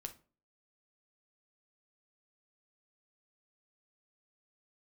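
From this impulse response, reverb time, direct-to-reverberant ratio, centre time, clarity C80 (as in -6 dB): 0.40 s, 5.0 dB, 8 ms, 21.5 dB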